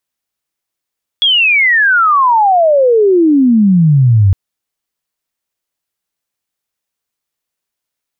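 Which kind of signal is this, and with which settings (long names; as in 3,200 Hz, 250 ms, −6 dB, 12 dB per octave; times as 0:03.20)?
glide logarithmic 3,400 Hz → 92 Hz −7 dBFS → −4.5 dBFS 3.11 s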